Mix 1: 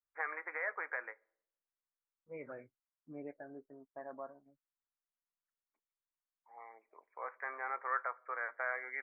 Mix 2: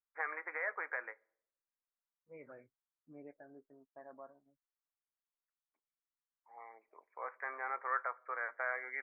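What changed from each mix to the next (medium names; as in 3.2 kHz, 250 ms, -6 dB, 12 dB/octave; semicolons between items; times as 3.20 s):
second voice -6.5 dB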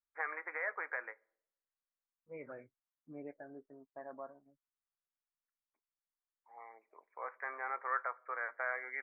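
second voice +5.5 dB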